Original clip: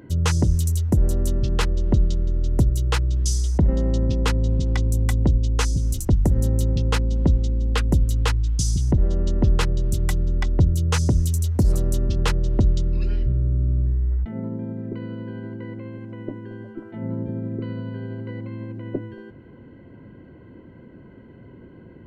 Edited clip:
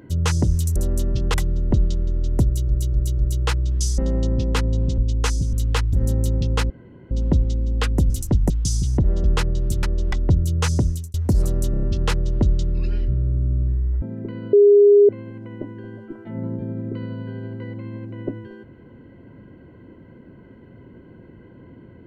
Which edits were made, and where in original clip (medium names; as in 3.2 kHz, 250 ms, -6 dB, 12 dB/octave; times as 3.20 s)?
0.76–1.04 s: delete
1.62–1.91 s: swap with 10.05–10.42 s
2.64–2.89 s: loop, 4 plays
3.43–3.69 s: delete
4.69–5.33 s: delete
5.88–6.28 s: swap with 8.04–8.44 s
7.05 s: insert room tone 0.41 s
9.18–9.46 s: delete
11.11–11.44 s: fade out
12.01 s: stutter 0.03 s, 5 plays
14.20–14.69 s: delete
15.20–15.76 s: bleep 408 Hz -8 dBFS